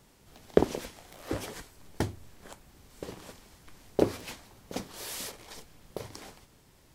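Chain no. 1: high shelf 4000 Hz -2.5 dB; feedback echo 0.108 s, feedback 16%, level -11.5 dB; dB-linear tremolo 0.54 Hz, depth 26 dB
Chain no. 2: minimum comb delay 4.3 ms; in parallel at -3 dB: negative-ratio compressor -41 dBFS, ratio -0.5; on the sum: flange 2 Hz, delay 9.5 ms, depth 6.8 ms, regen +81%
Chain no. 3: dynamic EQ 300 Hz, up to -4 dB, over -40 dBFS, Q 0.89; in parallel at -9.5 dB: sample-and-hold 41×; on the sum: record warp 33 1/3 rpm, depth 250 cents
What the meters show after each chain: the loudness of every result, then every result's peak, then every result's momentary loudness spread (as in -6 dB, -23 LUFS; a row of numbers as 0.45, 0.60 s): -42.5, -39.5, -35.5 LUFS; -14.0, -7.5, -3.0 dBFS; 22, 20, 22 LU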